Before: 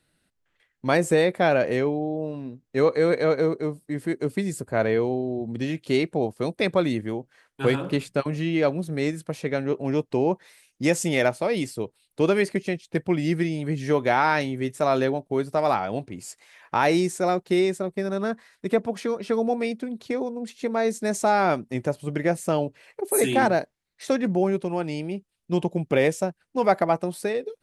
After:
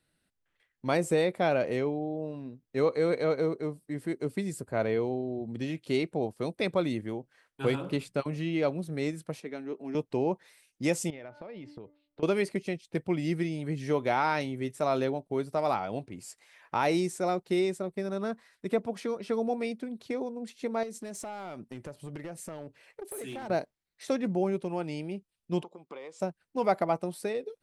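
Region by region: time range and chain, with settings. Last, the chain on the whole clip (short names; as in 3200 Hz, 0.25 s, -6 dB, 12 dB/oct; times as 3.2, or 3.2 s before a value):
9.4–9.95 ladder high-pass 180 Hz, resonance 30% + notch 530 Hz, Q 6.3
11.1–12.23 air absorption 280 m + de-hum 293.7 Hz, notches 7 + compressor 20:1, threshold -33 dBFS
20.83–23.5 compressor 8:1, threshold -29 dBFS + hard clip -28 dBFS
25.63–26.2 compressor 10:1, threshold -28 dBFS + speaker cabinet 450–6600 Hz, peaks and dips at 640 Hz -6 dB, 1100 Hz +9 dB, 1700 Hz -10 dB, 2700 Hz -7 dB, 5800 Hz -9 dB
whole clip: dynamic EQ 1700 Hz, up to -6 dB, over -48 dBFS, Q 5.7; notch 6700 Hz, Q 27; gain -6 dB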